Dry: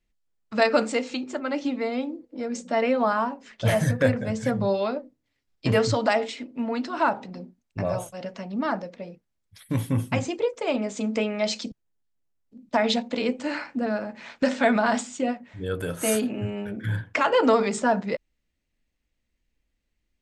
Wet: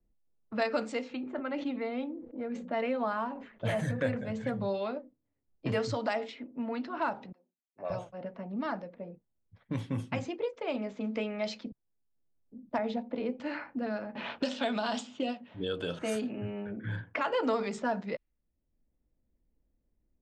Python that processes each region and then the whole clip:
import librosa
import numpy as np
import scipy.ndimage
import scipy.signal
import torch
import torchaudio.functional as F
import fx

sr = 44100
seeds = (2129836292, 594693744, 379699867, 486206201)

y = fx.chain(x, sr, fx.peak_eq(hz=5300.0, db=-11.5, octaves=0.35),
    fx.sustainer(db_per_s=84.0), at=(1.12, 4.95))
y = fx.chain(y, sr, fx.highpass(hz=500.0, slope=12),
    fx.high_shelf(hz=2200.0, db=7.5),
    fx.upward_expand(threshold_db=-38.0, expansion=2.5), at=(7.32, 7.9))
y = fx.chain(y, sr, fx.curve_eq(hz=(750.0, 4300.0, 10000.0), db=(0, -15, -19)),
    fx.band_squash(depth_pct=40), at=(12.78, 13.4))
y = fx.chain(y, sr, fx.highpass(hz=150.0, slope=6),
    fx.high_shelf_res(hz=2500.0, db=6.0, q=3.0),
    fx.band_squash(depth_pct=70), at=(14.15, 15.99))
y = fx.env_lowpass(y, sr, base_hz=630.0, full_db=-18.5)
y = scipy.signal.sosfilt(scipy.signal.butter(2, 7000.0, 'lowpass', fs=sr, output='sos'), y)
y = fx.band_squash(y, sr, depth_pct=40)
y = F.gain(torch.from_numpy(y), -8.5).numpy()